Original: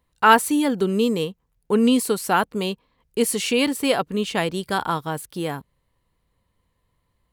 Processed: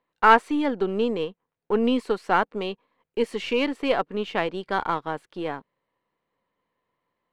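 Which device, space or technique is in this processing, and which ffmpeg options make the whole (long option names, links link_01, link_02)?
crystal radio: -af "highpass=290,lowpass=2500,aeval=exprs='if(lt(val(0),0),0.708*val(0),val(0))':channel_layout=same"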